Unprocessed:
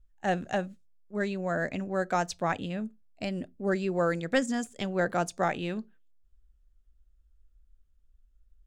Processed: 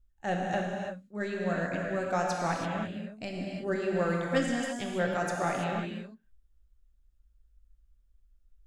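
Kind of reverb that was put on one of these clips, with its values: non-linear reverb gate 0.36 s flat, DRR -1.5 dB; gain -4.5 dB

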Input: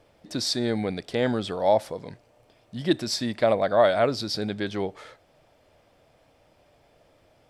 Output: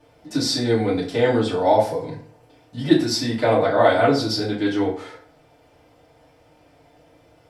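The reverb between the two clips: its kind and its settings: FDN reverb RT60 0.51 s, low-frequency decay 1×, high-frequency decay 0.65×, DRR -9 dB; gain -4 dB

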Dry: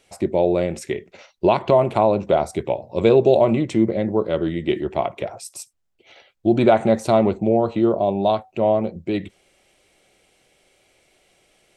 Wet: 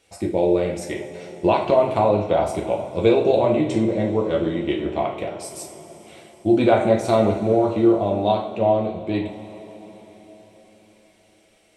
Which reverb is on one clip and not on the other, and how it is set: two-slope reverb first 0.45 s, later 4.6 s, from -18 dB, DRR -1 dB; gain -3.5 dB

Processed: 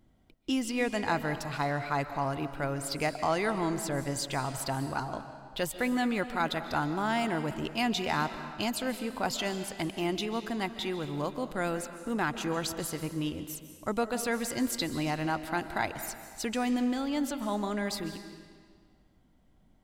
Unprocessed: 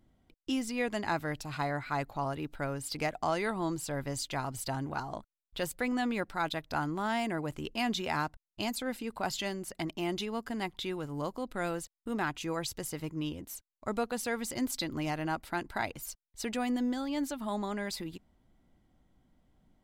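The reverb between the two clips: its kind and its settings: digital reverb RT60 1.8 s, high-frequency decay 0.9×, pre-delay 0.105 s, DRR 9.5 dB; gain +2.5 dB

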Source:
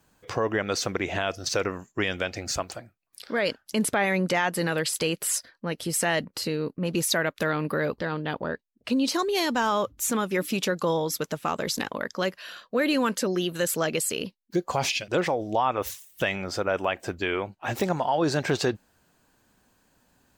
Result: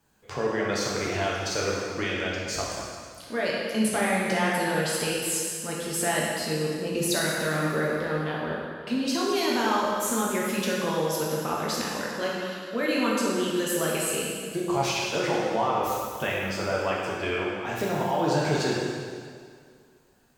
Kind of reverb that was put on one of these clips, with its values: plate-style reverb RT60 2.1 s, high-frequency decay 0.9×, DRR -5 dB; gain -6 dB

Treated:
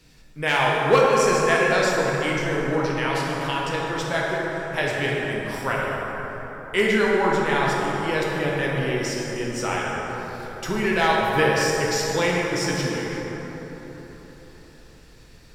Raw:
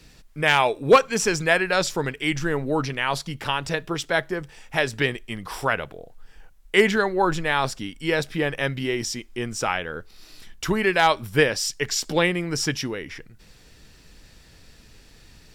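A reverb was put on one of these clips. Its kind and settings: plate-style reverb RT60 4.5 s, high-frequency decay 0.4×, DRR -4.5 dB; gain -5 dB

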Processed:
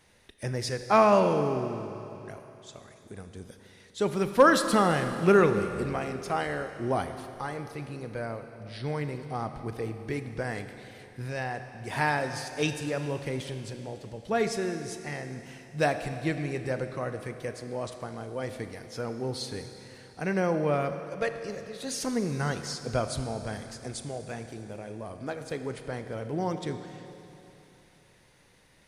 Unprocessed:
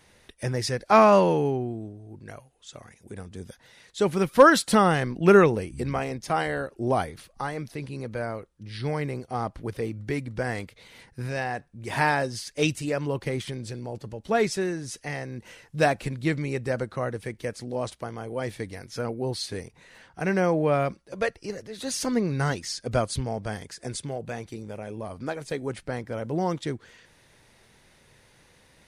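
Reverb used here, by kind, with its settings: Schroeder reverb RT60 3.1 s, combs from 27 ms, DRR 8 dB; gain -4 dB

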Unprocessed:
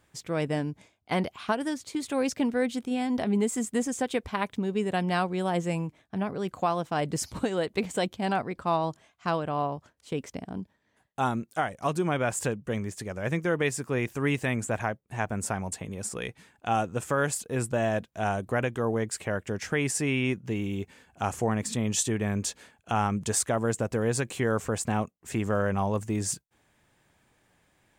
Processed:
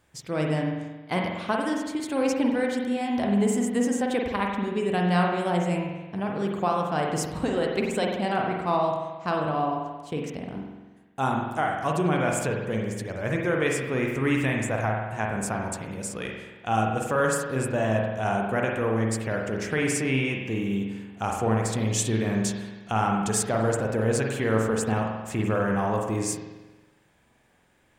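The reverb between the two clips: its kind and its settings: spring tank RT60 1.2 s, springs 45 ms, chirp 55 ms, DRR 0 dB

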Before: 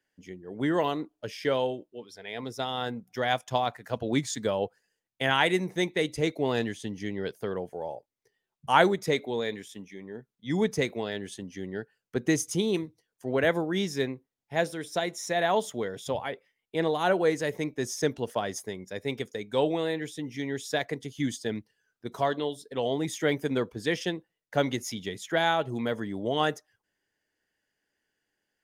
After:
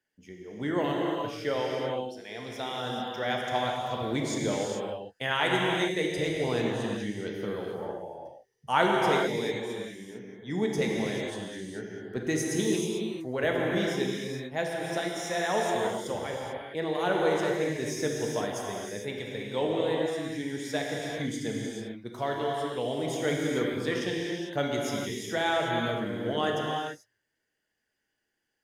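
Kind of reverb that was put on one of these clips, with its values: non-linear reverb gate 0.47 s flat, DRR -2 dB; gain -4.5 dB

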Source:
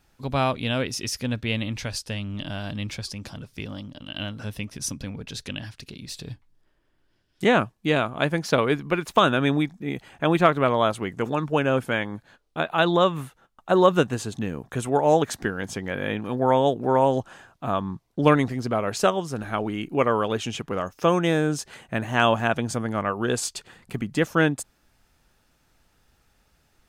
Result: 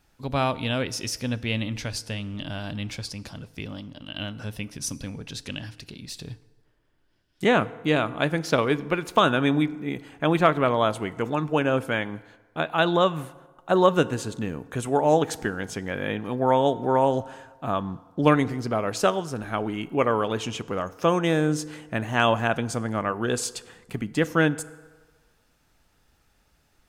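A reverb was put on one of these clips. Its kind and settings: FDN reverb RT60 1.4 s, low-frequency decay 0.8×, high-frequency decay 0.6×, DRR 16 dB; gain -1 dB

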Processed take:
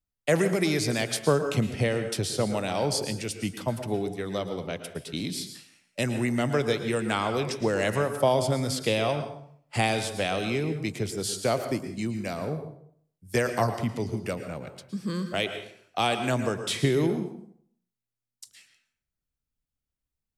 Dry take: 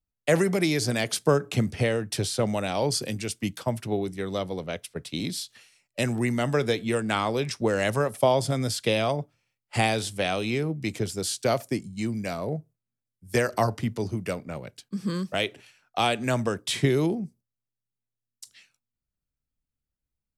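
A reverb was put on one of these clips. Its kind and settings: plate-style reverb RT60 0.61 s, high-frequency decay 0.75×, pre-delay 0.1 s, DRR 8 dB; gain -1.5 dB

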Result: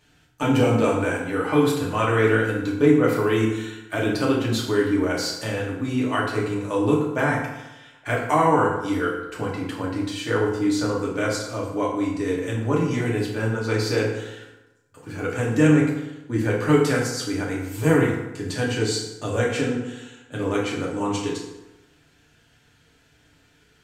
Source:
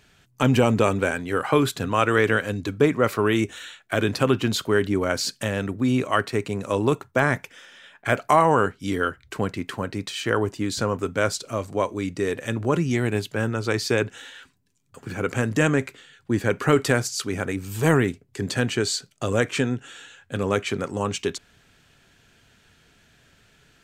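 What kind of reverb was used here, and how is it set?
FDN reverb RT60 1 s, low-frequency decay 1×, high-frequency decay 0.65×, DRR -5 dB; gain -7 dB

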